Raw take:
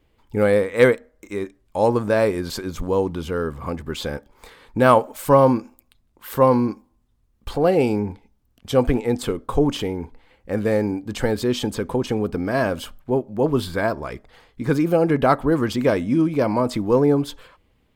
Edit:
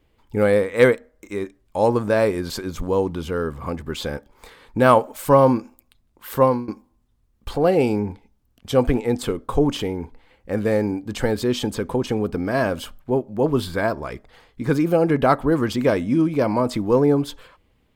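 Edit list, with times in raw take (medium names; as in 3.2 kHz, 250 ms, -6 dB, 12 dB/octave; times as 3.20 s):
6.42–6.68 s: fade out, to -20 dB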